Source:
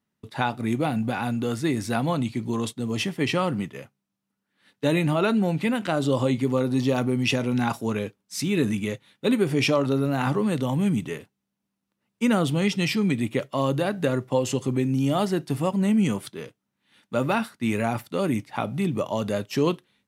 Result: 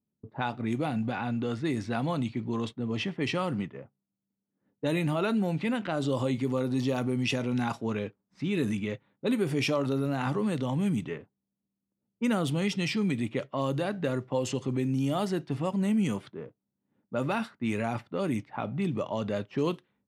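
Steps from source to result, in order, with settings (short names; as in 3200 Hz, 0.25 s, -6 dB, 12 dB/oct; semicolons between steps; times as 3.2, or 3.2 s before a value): low-pass opened by the level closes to 470 Hz, open at -18.5 dBFS; in parallel at -2 dB: limiter -20 dBFS, peak gain reduction 11 dB; on the sum: gain -8.5 dB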